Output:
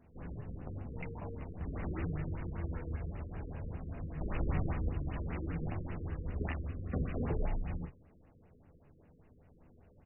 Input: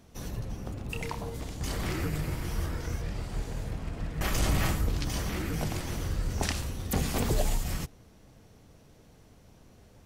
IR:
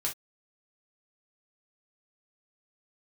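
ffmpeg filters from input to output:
-filter_complex "[0:a]asplit=3[a][b][c];[a]afade=t=out:st=6.64:d=0.02[d];[b]asuperstop=centerf=890:order=4:qfactor=3,afade=t=in:st=6.64:d=0.02,afade=t=out:st=7.16:d=0.02[e];[c]afade=t=in:st=7.16:d=0.02[f];[d][e][f]amix=inputs=3:normalize=0,aecho=1:1:12|41|63:0.501|0.447|0.133,afftfilt=real='re*lt(b*sr/1024,500*pow(3000/500,0.5+0.5*sin(2*PI*5.1*pts/sr)))':imag='im*lt(b*sr/1024,500*pow(3000/500,0.5+0.5*sin(2*PI*5.1*pts/sr)))':win_size=1024:overlap=0.75,volume=-7dB"

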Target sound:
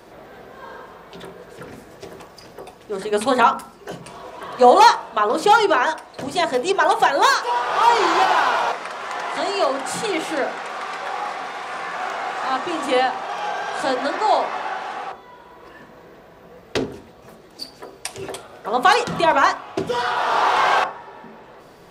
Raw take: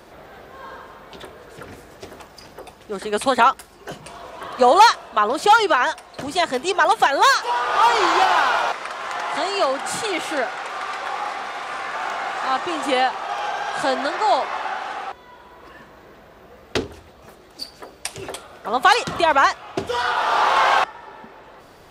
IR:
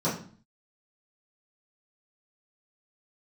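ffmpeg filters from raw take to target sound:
-filter_complex "[0:a]asplit=2[a][b];[1:a]atrim=start_sample=2205,lowpass=2.3k[c];[b][c]afir=irnorm=-1:irlink=0,volume=-17.5dB[d];[a][d]amix=inputs=2:normalize=0,volume=-1dB"

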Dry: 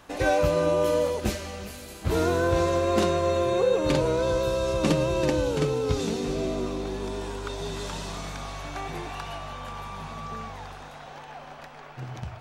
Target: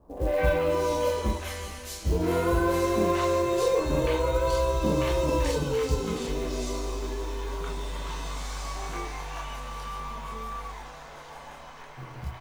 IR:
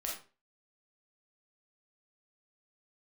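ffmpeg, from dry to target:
-filter_complex "[0:a]acrossover=split=770|3600[a][b][c];[b]adelay=170[d];[c]adelay=600[e];[a][d][e]amix=inputs=3:normalize=0[f];[1:a]atrim=start_sample=2205,atrim=end_sample=6615,asetrate=70560,aresample=44100[g];[f][g]afir=irnorm=-1:irlink=0,acrusher=bits=7:mode=log:mix=0:aa=0.000001,volume=3.5dB"

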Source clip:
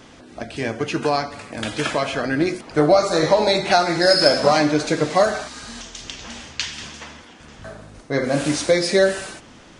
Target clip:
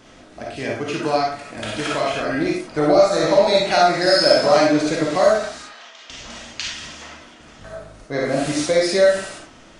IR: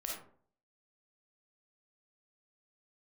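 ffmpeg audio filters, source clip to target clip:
-filter_complex "[0:a]asettb=1/sr,asplit=3[a][b][c];[a]atrim=end=5.624[d];[b]atrim=start=5.62:end=6.1,asetpts=PTS-STARTPTS,afade=t=in:d=0.004:c=qsin,afade=t=out:st=0.476:d=0.004:c=qsin,highpass=670,lowpass=3.1k[e];[c]atrim=start=6.096[f];[d][e]acrossfade=d=0.004:c1=hsin:c2=qsin[g];[g][f]acrossfade=d=0.004:c1=qsin:c2=hsin[h];[1:a]atrim=start_sample=2205,afade=t=out:st=0.17:d=0.01,atrim=end_sample=7938[i];[h][i]afir=irnorm=-1:irlink=0"

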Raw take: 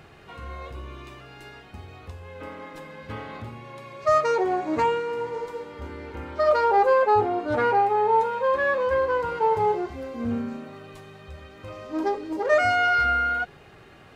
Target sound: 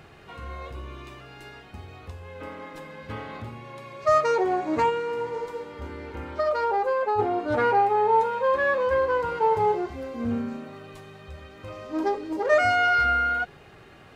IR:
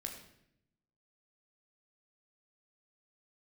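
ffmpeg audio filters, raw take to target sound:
-filter_complex "[0:a]asplit=3[a][b][c];[a]afade=t=out:st=4.89:d=0.02[d];[b]acompressor=threshold=-22dB:ratio=4,afade=t=in:st=4.89:d=0.02,afade=t=out:st=7.18:d=0.02[e];[c]afade=t=in:st=7.18:d=0.02[f];[d][e][f]amix=inputs=3:normalize=0"

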